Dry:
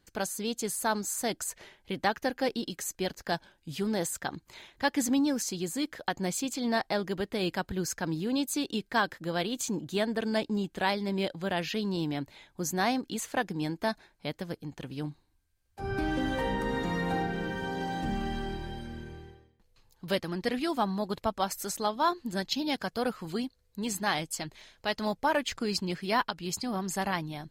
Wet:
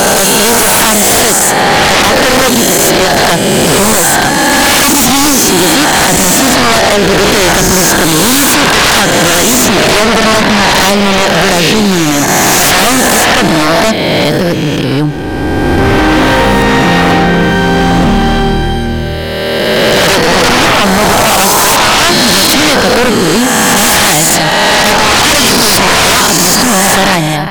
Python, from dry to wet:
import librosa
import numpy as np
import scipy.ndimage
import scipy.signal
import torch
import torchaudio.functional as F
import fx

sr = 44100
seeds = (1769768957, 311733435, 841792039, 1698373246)

y = fx.spec_swells(x, sr, rise_s=2.7)
y = y + 10.0 ** (-17.0 / 20.0) * np.pad(y, (int(408 * sr / 1000.0), 0))[:len(y)]
y = fx.fold_sine(y, sr, drive_db=19, ceiling_db=-6.5)
y = F.gain(torch.from_numpy(y), 2.5).numpy()